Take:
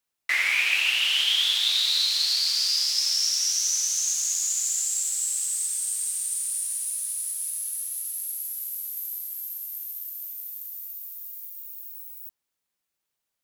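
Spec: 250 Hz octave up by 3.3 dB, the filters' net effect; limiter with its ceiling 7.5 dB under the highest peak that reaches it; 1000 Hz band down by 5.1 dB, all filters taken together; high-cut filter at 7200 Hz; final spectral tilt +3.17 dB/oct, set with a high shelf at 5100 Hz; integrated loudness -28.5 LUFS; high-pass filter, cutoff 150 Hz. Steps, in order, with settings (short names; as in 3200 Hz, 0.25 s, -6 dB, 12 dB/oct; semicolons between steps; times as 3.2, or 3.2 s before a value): HPF 150 Hz; LPF 7200 Hz; bell 250 Hz +5.5 dB; bell 1000 Hz -7.5 dB; high shelf 5100 Hz +3.5 dB; gain -3.5 dB; limiter -20.5 dBFS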